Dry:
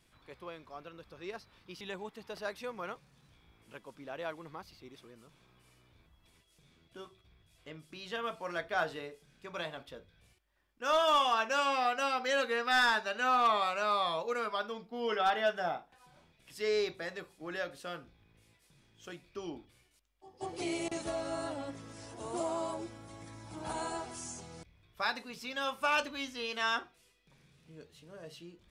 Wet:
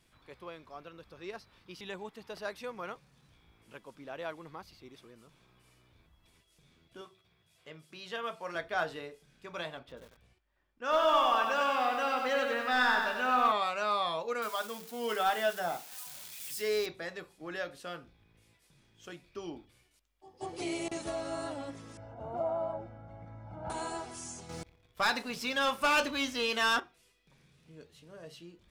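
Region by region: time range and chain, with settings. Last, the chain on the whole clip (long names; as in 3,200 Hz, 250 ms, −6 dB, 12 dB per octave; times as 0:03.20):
0:07.01–0:08.55: high-pass filter 140 Hz + parametric band 280 Hz −9 dB 0.34 octaves
0:09.79–0:13.52: low-pass filter 2,700 Hz 6 dB per octave + double-tracking delay 16 ms −13 dB + feedback echo at a low word length 95 ms, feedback 55%, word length 9 bits, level −4 dB
0:14.42–0:16.86: spike at every zero crossing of −35 dBFS + mains-hum notches 50/100/150/200/250/300/350/400/450 Hz
0:21.97–0:23.70: low-pass filter 1,200 Hz + comb filter 1.4 ms, depth 71%
0:24.49–0:26.80: leveller curve on the samples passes 2 + feedback echo with a band-pass in the loop 118 ms, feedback 66%, band-pass 460 Hz, level −24 dB
whole clip: no processing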